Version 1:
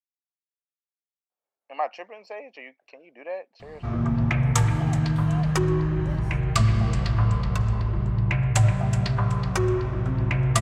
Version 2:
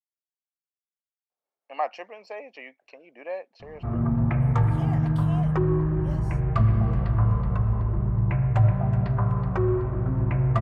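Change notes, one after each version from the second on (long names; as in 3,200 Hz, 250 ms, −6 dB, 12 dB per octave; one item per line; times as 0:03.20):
background: add low-pass filter 1,200 Hz 12 dB per octave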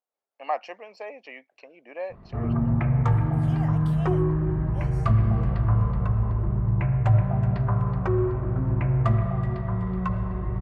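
speech: entry −1.30 s
background: entry −1.50 s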